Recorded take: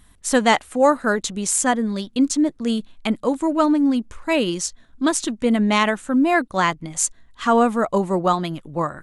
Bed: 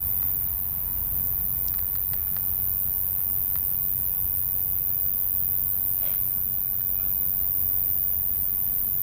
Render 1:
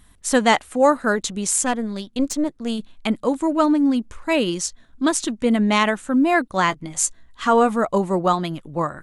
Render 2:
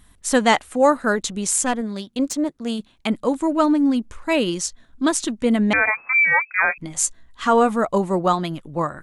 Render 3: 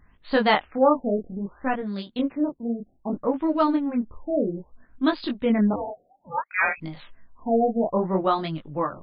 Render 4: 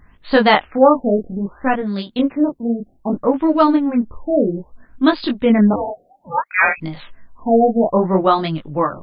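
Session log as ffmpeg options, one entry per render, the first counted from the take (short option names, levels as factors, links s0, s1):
-filter_complex "[0:a]asplit=3[s0][s1][s2];[s0]afade=t=out:st=1.63:d=0.02[s3];[s1]aeval=exprs='(tanh(3.55*val(0)+0.7)-tanh(0.7))/3.55':c=same,afade=t=in:st=1.63:d=0.02,afade=t=out:st=2.78:d=0.02[s4];[s2]afade=t=in:st=2.78:d=0.02[s5];[s3][s4][s5]amix=inputs=3:normalize=0,asettb=1/sr,asplit=3[s6][s7][s8];[s6]atrim=end=6.684[s9];[s7]atrim=start=6.68:end=7.76,asetpts=PTS-STARTPTS,afade=t=in:d=0.004:c=qsin,afade=t=out:st=1.076:d=0.004:c=qsin,asplit=2[s10][s11];[s11]adelay=15,volume=0.282[s12];[s10][s12]amix=inputs=2:normalize=0,atrim=end_sample=47628[s13];[s8]atrim=start=7.756[s14];[s9][s13]acrossfade=d=0.004:c1=hsin:c2=qsin[s15];[s15][s14]acrossfade=d=0.004:c1=qsin:c2=hsin"
-filter_complex "[0:a]asettb=1/sr,asplit=3[s0][s1][s2];[s0]atrim=end=1.814[s3];[s1]atrim=start=1.81:end=3.13,asetpts=PTS-STARTPTS,afade=t=in:d=0.004:c=qsin,afade=t=out:st=1.316:d=0.004:c=qsin,highpass=f=75:p=1[s4];[s2]atrim=start=3.126[s5];[s3][s4]acrossfade=d=0.004:c1=hsin:c2=qsin[s6];[s6][s5]acrossfade=d=0.004:c1=qsin:c2=hsin,asettb=1/sr,asplit=3[s7][s8][s9];[s7]atrim=end=5.734[s10];[s8]atrim=start=5.73:end=6.78,asetpts=PTS-STARTPTS,afade=t=in:d=0.004:c=qsin,afade=t=out:st=1.046:d=0.004:c=qsin,lowpass=f=2200:t=q:w=0.5098,lowpass=f=2200:t=q:w=0.6013,lowpass=f=2200:t=q:w=0.9,lowpass=f=2200:t=q:w=2.563,afreqshift=-2600[s11];[s9]atrim=start=6.776[s12];[s10][s11]acrossfade=d=0.004:c1=hsin:c2=qsin[s13];[s13][s12]acrossfade=d=0.004:c1=qsin:c2=hsin"
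-af "flanger=delay=19:depth=7.7:speed=0.59,afftfilt=real='re*lt(b*sr/1024,750*pow(5100/750,0.5+0.5*sin(2*PI*0.62*pts/sr)))':imag='im*lt(b*sr/1024,750*pow(5100/750,0.5+0.5*sin(2*PI*0.62*pts/sr)))':win_size=1024:overlap=0.75"
-af "volume=2.51,alimiter=limit=0.891:level=0:latency=1"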